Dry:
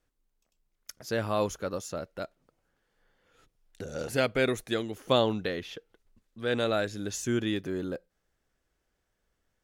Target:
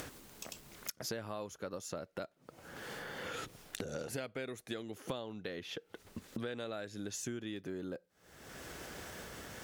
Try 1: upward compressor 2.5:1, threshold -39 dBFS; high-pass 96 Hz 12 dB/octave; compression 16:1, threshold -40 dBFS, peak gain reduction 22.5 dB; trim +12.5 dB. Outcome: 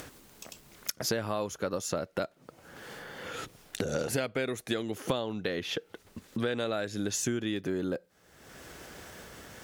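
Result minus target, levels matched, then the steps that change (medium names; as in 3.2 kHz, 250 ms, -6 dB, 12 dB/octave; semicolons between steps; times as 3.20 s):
compression: peak gain reduction -10 dB
change: compression 16:1, threshold -50.5 dBFS, peak gain reduction 32.5 dB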